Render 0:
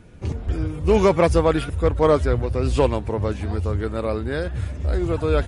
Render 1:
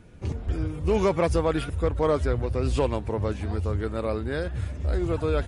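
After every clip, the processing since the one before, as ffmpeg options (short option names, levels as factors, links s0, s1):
-af "alimiter=limit=0.282:level=0:latency=1:release=98,volume=0.668"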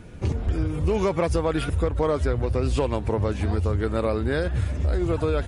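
-af "acompressor=threshold=0.0447:ratio=6,volume=2.37"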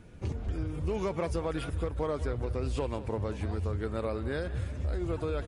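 -af "aecho=1:1:194|388|582|776:0.168|0.0739|0.0325|0.0143,volume=0.355"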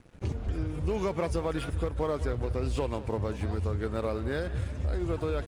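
-af "aeval=exprs='sgn(val(0))*max(abs(val(0))-0.00237,0)':c=same,volume=1.33"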